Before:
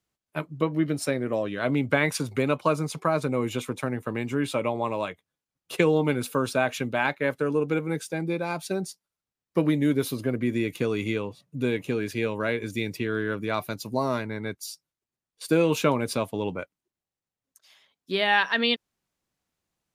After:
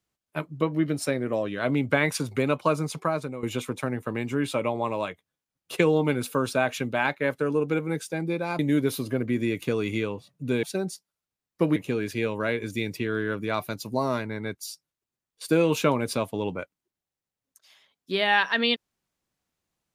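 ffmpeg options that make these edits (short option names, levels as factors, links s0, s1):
-filter_complex "[0:a]asplit=5[s0][s1][s2][s3][s4];[s0]atrim=end=3.43,asetpts=PTS-STARTPTS,afade=t=out:st=2.98:d=0.45:silence=0.199526[s5];[s1]atrim=start=3.43:end=8.592,asetpts=PTS-STARTPTS,afade=t=in:d=0.004:c=hsin:silence=0.199526[s6];[s2]atrim=start=9.718:end=11.762[s7];[s3]atrim=start=8.588:end=9.722[s8];[s4]atrim=start=11.758[s9];[s5][s6]concat=n=2:v=0:a=1[s10];[s10][s7]acrossfade=d=0.004:c1=hsin:c2=hsin[s11];[s11][s8]acrossfade=d=0.004:c1=hsin:c2=hsin[s12];[s12][s9]acrossfade=d=0.004:c1=hsin:c2=hsin"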